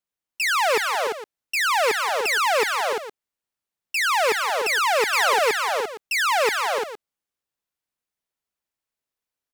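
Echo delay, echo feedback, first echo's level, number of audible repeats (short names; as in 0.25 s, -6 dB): 0.175 s, no steady repeat, -17.5 dB, 4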